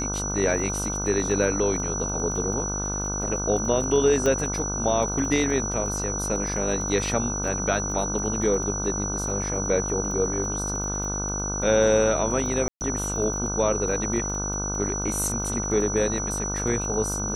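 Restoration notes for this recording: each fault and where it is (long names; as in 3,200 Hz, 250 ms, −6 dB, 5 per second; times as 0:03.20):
mains buzz 50 Hz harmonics 31 −31 dBFS
surface crackle 14 per second −31 dBFS
whistle 5,900 Hz −29 dBFS
0:04.26: click −12 dBFS
0:12.68–0:12.81: drop-out 129 ms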